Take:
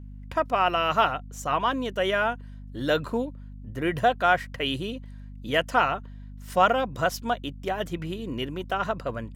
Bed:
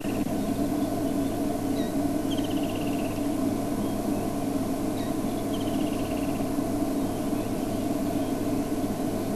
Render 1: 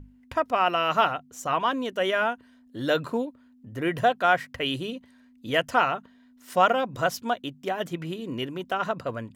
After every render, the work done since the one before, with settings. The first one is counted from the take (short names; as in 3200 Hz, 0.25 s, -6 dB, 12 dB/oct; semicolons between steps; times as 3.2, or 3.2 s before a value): notches 50/100/150/200 Hz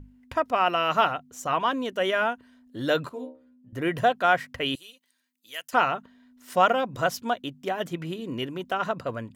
3.09–3.73 metallic resonator 62 Hz, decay 0.44 s, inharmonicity 0.002; 4.75–5.73 differentiator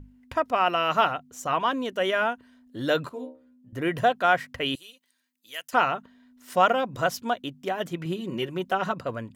8.05–8.94 comb 5.4 ms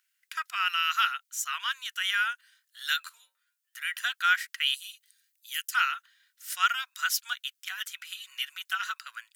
elliptic high-pass 1400 Hz, stop band 80 dB; high shelf 4400 Hz +12 dB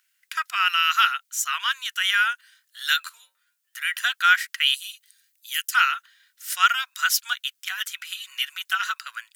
gain +6.5 dB